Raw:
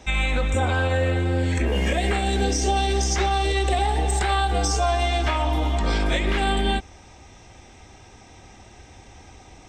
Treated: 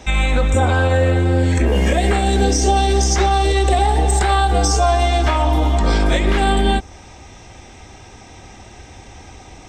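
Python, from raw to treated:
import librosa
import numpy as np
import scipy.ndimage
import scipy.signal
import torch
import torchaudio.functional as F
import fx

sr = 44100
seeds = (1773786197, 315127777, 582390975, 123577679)

y = fx.dynamic_eq(x, sr, hz=2600.0, q=1.0, threshold_db=-40.0, ratio=4.0, max_db=-5)
y = y * librosa.db_to_amplitude(7.0)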